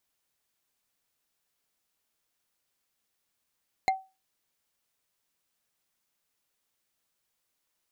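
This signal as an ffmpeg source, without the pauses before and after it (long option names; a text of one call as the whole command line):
ffmpeg -f lavfi -i "aevalsrc='0.126*pow(10,-3*t/0.27)*sin(2*PI*764*t)+0.0708*pow(10,-3*t/0.08)*sin(2*PI*2106.3*t)+0.0398*pow(10,-3*t/0.036)*sin(2*PI*4128.7*t)+0.0224*pow(10,-3*t/0.02)*sin(2*PI*6824.8*t)+0.0126*pow(10,-3*t/0.012)*sin(2*PI*10191.8*t)':duration=0.45:sample_rate=44100" out.wav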